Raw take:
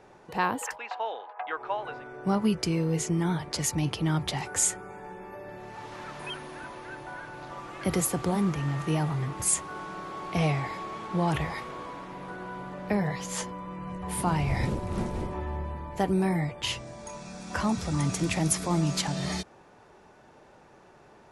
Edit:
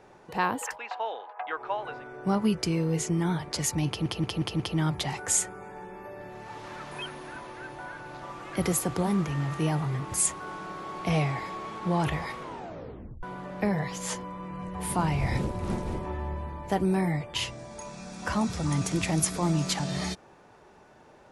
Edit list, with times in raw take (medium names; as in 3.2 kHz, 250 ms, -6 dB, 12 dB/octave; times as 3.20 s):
3.88 s: stutter 0.18 s, 5 plays
11.70 s: tape stop 0.81 s